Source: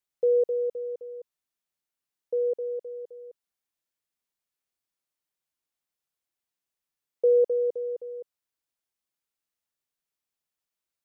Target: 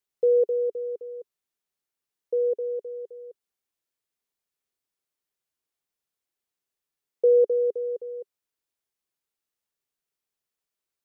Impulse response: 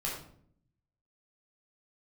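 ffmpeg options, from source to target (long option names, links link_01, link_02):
-af "equalizer=frequency=410:width_type=o:width=0.35:gain=6"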